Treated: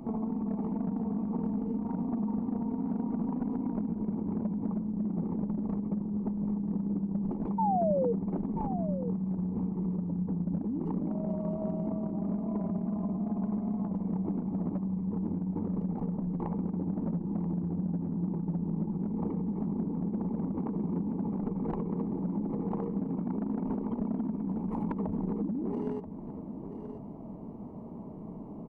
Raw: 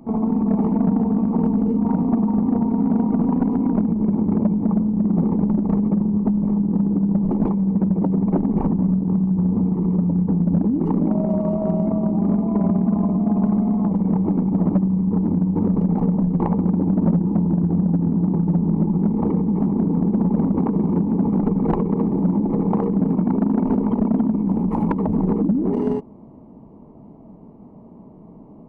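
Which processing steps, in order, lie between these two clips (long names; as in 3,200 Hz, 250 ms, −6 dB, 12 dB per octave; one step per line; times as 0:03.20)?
downward compressor 3 to 1, threshold −35 dBFS, peak gain reduction 15 dB
sound drawn into the spectrogram fall, 0:07.58–0:08.13, 450–930 Hz −28 dBFS
single-tap delay 982 ms −10.5 dB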